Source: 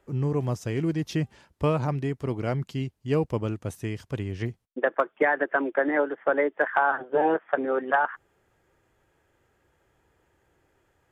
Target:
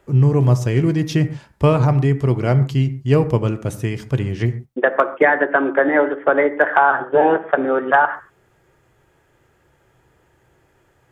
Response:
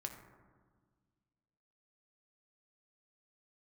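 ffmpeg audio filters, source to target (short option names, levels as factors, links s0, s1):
-filter_complex "[0:a]equalizer=f=140:t=o:w=0.26:g=5.5,asplit=2[s0][s1];[1:a]atrim=start_sample=2205,atrim=end_sample=6615[s2];[s1][s2]afir=irnorm=-1:irlink=0,volume=1.33[s3];[s0][s3]amix=inputs=2:normalize=0,volume=1.41"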